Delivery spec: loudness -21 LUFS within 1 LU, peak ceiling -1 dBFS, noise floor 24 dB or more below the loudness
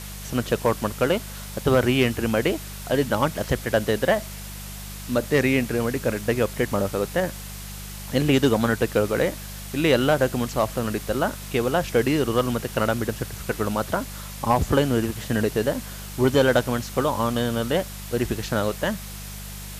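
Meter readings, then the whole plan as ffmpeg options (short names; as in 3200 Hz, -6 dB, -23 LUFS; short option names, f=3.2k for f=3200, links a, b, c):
hum 50 Hz; harmonics up to 200 Hz; hum level -36 dBFS; noise floor -36 dBFS; noise floor target -48 dBFS; loudness -23.5 LUFS; peak -9.0 dBFS; loudness target -21.0 LUFS
-> -af "bandreject=f=50:t=h:w=4,bandreject=f=100:t=h:w=4,bandreject=f=150:t=h:w=4,bandreject=f=200:t=h:w=4"
-af "afftdn=nr=12:nf=-36"
-af "volume=2.5dB"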